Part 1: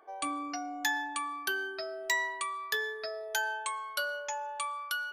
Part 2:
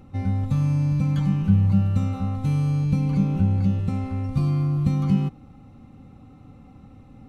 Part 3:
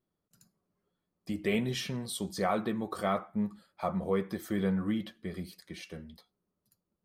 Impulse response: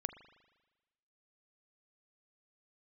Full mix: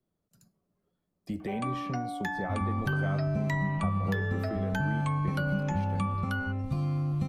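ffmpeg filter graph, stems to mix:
-filter_complex "[0:a]adelay=1400,volume=1.26[s0];[1:a]adelay=2350,volume=0.562[s1];[2:a]lowshelf=f=390:g=7,alimiter=limit=0.0841:level=0:latency=1:release=330,volume=0.794[s2];[s0][s1][s2]amix=inputs=3:normalize=0,equalizer=f=650:t=o:w=0.56:g=4,acrossover=split=170|400|1200|2400[s3][s4][s5][s6][s7];[s3]acompressor=threshold=0.0282:ratio=4[s8];[s4]acompressor=threshold=0.0178:ratio=4[s9];[s5]acompressor=threshold=0.0141:ratio=4[s10];[s6]acompressor=threshold=0.0126:ratio=4[s11];[s7]acompressor=threshold=0.00158:ratio=4[s12];[s8][s9][s10][s11][s12]amix=inputs=5:normalize=0"

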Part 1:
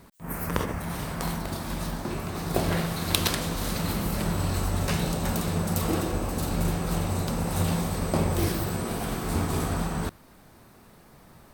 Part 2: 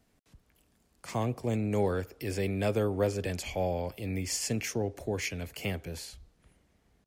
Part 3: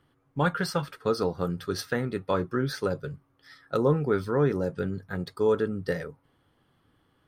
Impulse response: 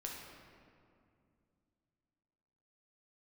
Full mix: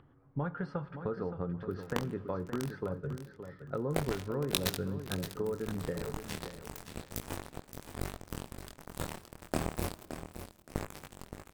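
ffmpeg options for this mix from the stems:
-filter_complex "[0:a]acrusher=bits=2:mix=0:aa=0.5,flanger=delay=20:depth=5.8:speed=0.32,acompressor=mode=upward:threshold=0.00224:ratio=2.5,adelay=1400,volume=0.668,asplit=3[s0][s1][s2];[s1]volume=0.158[s3];[s2]volume=0.335[s4];[2:a]lowpass=1500,acompressor=threshold=0.0224:ratio=4,volume=0.668,asplit=3[s5][s6][s7];[s6]volume=0.224[s8];[s7]volume=0.355[s9];[3:a]atrim=start_sample=2205[s10];[s3][s8]amix=inputs=2:normalize=0[s11];[s11][s10]afir=irnorm=-1:irlink=0[s12];[s4][s9]amix=inputs=2:normalize=0,aecho=0:1:570|1140|1710|2280:1|0.23|0.0529|0.0122[s13];[s0][s5][s12][s13]amix=inputs=4:normalize=0,lowshelf=f=210:g=5.5,acompressor=mode=upward:threshold=0.00158:ratio=2.5"

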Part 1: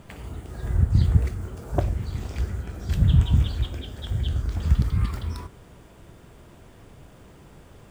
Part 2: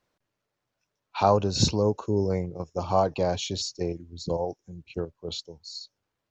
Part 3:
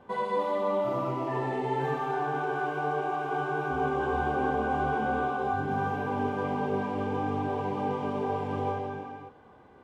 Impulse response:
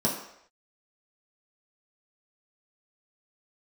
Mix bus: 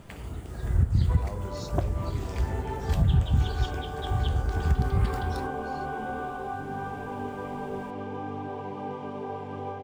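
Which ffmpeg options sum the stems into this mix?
-filter_complex "[0:a]volume=0.891[s0];[1:a]volume=0.119,asplit=2[s1][s2];[2:a]adelay=1000,volume=0.562[s3];[s2]apad=whole_len=477719[s4];[s3][s4]sidechaincompress=threshold=0.00447:ratio=8:attack=16:release=206[s5];[s0][s1][s5]amix=inputs=3:normalize=0,alimiter=limit=0.237:level=0:latency=1:release=297"

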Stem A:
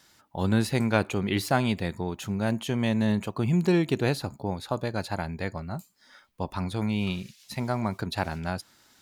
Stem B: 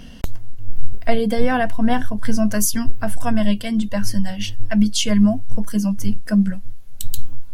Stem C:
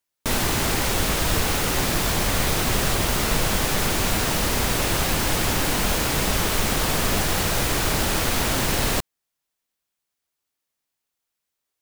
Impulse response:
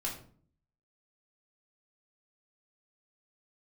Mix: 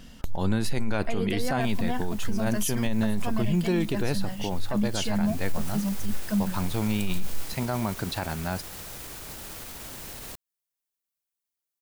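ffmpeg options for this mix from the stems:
-filter_complex "[0:a]volume=1.12[s0];[1:a]volume=0.376[s1];[2:a]crystalizer=i=1:c=0,alimiter=limit=0.126:level=0:latency=1:release=172,adelay=1350,volume=0.251,afade=t=in:st=5:d=0.67:silence=0.375837[s2];[s0][s1][s2]amix=inputs=3:normalize=0,alimiter=limit=0.141:level=0:latency=1:release=20"

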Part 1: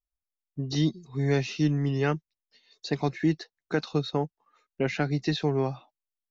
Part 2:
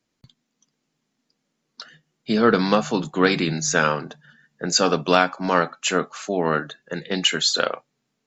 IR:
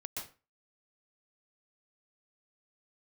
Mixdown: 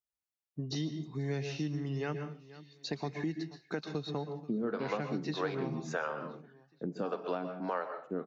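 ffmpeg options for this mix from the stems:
-filter_complex "[0:a]highpass=100,volume=0.531,asplit=3[s0][s1][s2];[s1]volume=0.562[s3];[s2]volume=0.0794[s4];[1:a]agate=range=0.0224:threshold=0.00501:ratio=3:detection=peak,acrossover=split=420[s5][s6];[s5]aeval=exprs='val(0)*(1-1/2+1/2*cos(2*PI*1.7*n/s))':c=same[s7];[s6]aeval=exprs='val(0)*(1-1/2-1/2*cos(2*PI*1.7*n/s))':c=same[s8];[s7][s8]amix=inputs=2:normalize=0,bandpass=f=430:t=q:w=0.58:csg=0,adelay=2200,volume=0.708,asplit=2[s9][s10];[s10]volume=0.501[s11];[2:a]atrim=start_sample=2205[s12];[s3][s11]amix=inputs=2:normalize=0[s13];[s13][s12]afir=irnorm=-1:irlink=0[s14];[s4]aecho=0:1:481|962|1443|1924|2405|2886:1|0.43|0.185|0.0795|0.0342|0.0147[s15];[s0][s9][s14][s15]amix=inputs=4:normalize=0,acompressor=threshold=0.02:ratio=3"

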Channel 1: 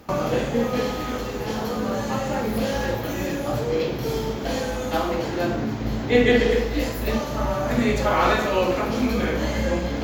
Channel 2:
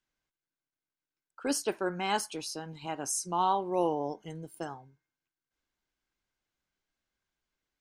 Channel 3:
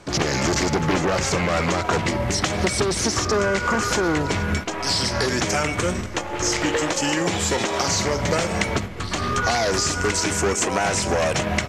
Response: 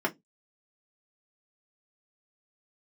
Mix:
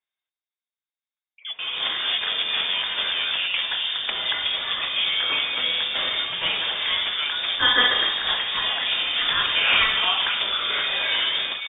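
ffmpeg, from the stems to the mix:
-filter_complex "[0:a]crystalizer=i=10:c=0,adelay=1500,volume=0.531,asplit=2[s0][s1];[s1]volume=0.1[s2];[1:a]volume=0.708,asplit=2[s3][s4];[2:a]adelay=1650,volume=0.562[s5];[s4]apad=whole_len=508524[s6];[s0][s6]sidechaincompress=threshold=0.02:ratio=4:attack=36:release=1110[s7];[s2]aecho=0:1:1036:1[s8];[s7][s3][s5][s8]amix=inputs=4:normalize=0,lowpass=f=3100:t=q:w=0.5098,lowpass=f=3100:t=q:w=0.6013,lowpass=f=3100:t=q:w=0.9,lowpass=f=3100:t=q:w=2.563,afreqshift=-3700"

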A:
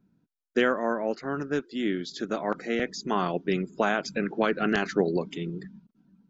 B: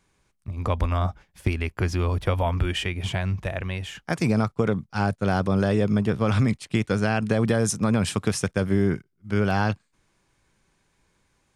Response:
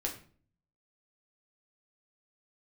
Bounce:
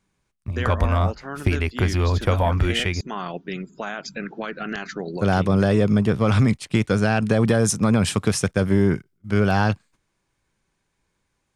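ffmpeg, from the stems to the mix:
-filter_complex "[0:a]alimiter=limit=0.158:level=0:latency=1:release=79,equalizer=f=360:t=o:w=1.7:g=-6.5,volume=1.19[s0];[1:a]acontrast=86,volume=0.708,asplit=3[s1][s2][s3];[s1]atrim=end=3.01,asetpts=PTS-STARTPTS,afade=t=out:st=3.006:d=0.004:c=hsin[s4];[s2]atrim=start=3.01:end=5.14,asetpts=PTS-STARTPTS,volume=0[s5];[s3]atrim=start=5.14,asetpts=PTS-STARTPTS,afade=t=in:d=0.004:c=hsin[s6];[s4][s5][s6]concat=n=3:v=0:a=1[s7];[s0][s7]amix=inputs=2:normalize=0,agate=range=0.316:threshold=0.00355:ratio=16:detection=peak"

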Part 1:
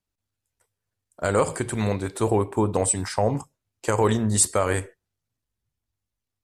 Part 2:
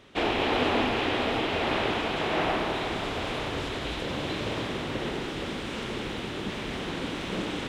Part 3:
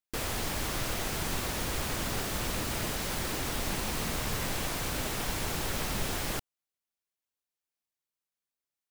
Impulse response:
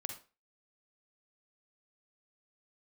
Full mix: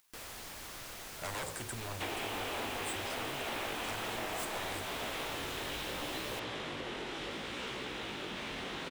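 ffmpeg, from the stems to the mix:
-filter_complex "[0:a]equalizer=f=94:w=1.5:g=7.5,aeval=exprs='0.1*(abs(mod(val(0)/0.1+3,4)-2)-1)':c=same,volume=0.355[s0];[1:a]flanger=delay=15.5:depth=6.8:speed=0.68,adelay=1850,volume=1.06[s1];[2:a]acompressor=mode=upward:threshold=0.0158:ratio=2.5,acrusher=bits=8:mix=0:aa=0.000001,volume=0.282[s2];[s0][s1]amix=inputs=2:normalize=0,acompressor=threshold=0.0224:ratio=6,volume=1[s3];[s2][s3]amix=inputs=2:normalize=0,lowshelf=f=420:g=-9"

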